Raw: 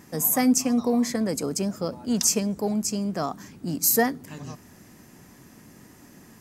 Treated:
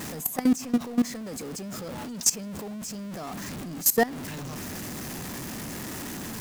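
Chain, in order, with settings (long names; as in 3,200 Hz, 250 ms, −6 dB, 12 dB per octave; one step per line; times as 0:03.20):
converter with a step at zero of −24 dBFS
output level in coarse steps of 18 dB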